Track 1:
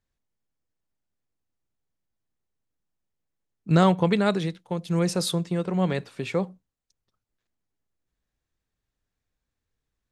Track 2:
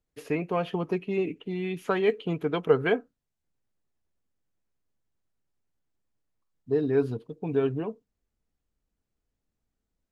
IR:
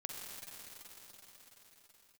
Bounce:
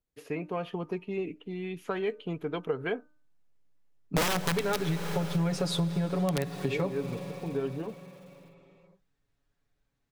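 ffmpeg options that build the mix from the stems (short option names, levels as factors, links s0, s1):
-filter_complex "[0:a]highshelf=f=6100:g=-11.5,aecho=1:1:7.1:0.97,aeval=exprs='(mod(3.55*val(0)+1,2)-1)/3.55':c=same,adelay=450,volume=1,asplit=2[s0][s1];[s1]volume=0.398[s2];[1:a]bandreject=f=302.8:t=h:w=4,bandreject=f=605.6:t=h:w=4,bandreject=f=908.4:t=h:w=4,bandreject=f=1211.2:t=h:w=4,bandreject=f=1514:t=h:w=4,volume=0.562[s3];[2:a]atrim=start_sample=2205[s4];[s2][s4]afir=irnorm=-1:irlink=0[s5];[s0][s3][s5]amix=inputs=3:normalize=0,acompressor=threshold=0.0501:ratio=6"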